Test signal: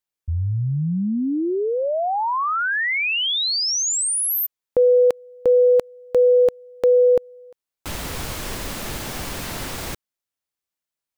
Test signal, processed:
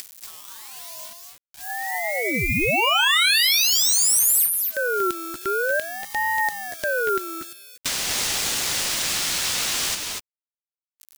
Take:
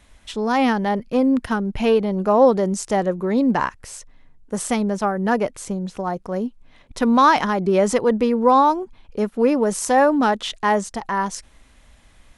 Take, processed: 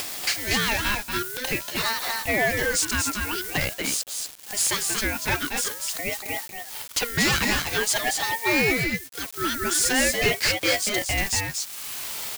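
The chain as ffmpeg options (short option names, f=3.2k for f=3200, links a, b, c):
-filter_complex "[0:a]highpass=100,lowpass=6k,acrossover=split=280|2200[a][b][c];[a]acompressor=threshold=-37dB:ratio=8:attack=0.7:release=25:knee=1:detection=peak[d];[d][b][c]amix=inputs=3:normalize=0,afftfilt=real='re*(1-between(b*sr/4096,210,450))':imag='im*(1-between(b*sr/4096,210,450))':win_size=4096:overlap=0.75,acompressor=mode=upward:threshold=-28dB:ratio=2.5:attack=32:release=588:knee=2.83:detection=peak,acrusher=bits=7:mix=0:aa=0.000001,aderivative,aeval=exprs='0.188*sin(PI/2*5.01*val(0)/0.188)':c=same,aecho=1:1:236|249:0.531|0.335,aeval=exprs='val(0)*sin(2*PI*1100*n/s+1100*0.25/0.47*sin(2*PI*0.47*n/s))':c=same"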